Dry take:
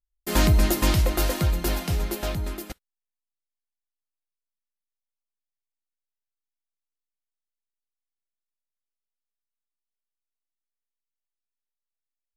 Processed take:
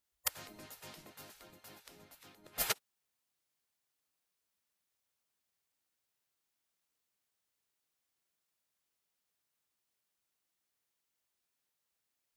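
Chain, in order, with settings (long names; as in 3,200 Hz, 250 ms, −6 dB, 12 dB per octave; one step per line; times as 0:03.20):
gate with flip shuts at −21 dBFS, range −35 dB
gate on every frequency bin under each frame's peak −15 dB weak
level +10.5 dB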